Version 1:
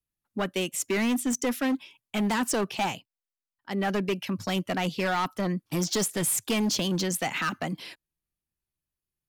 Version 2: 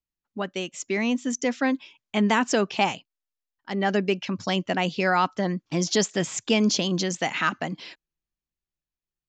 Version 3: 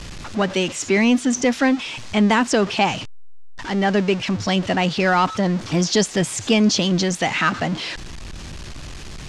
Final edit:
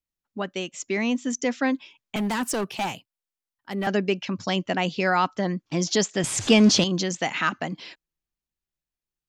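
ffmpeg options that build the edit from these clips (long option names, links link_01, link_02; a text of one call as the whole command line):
ffmpeg -i take0.wav -i take1.wav -i take2.wav -filter_complex "[1:a]asplit=3[link_01][link_02][link_03];[link_01]atrim=end=2.162[link_04];[0:a]atrim=start=2.158:end=3.872[link_05];[link_02]atrim=start=3.868:end=6.242[link_06];[2:a]atrim=start=6.238:end=6.842[link_07];[link_03]atrim=start=6.838[link_08];[link_04][link_05]acrossfade=duration=0.004:curve1=hsin:curve2=hsin[link_09];[link_09][link_06]acrossfade=duration=0.004:curve1=hsin:curve2=hsin[link_10];[link_10][link_07]acrossfade=duration=0.004:curve1=hsin:curve2=hsin[link_11];[link_11][link_08]acrossfade=duration=0.004:curve1=hsin:curve2=hsin" out.wav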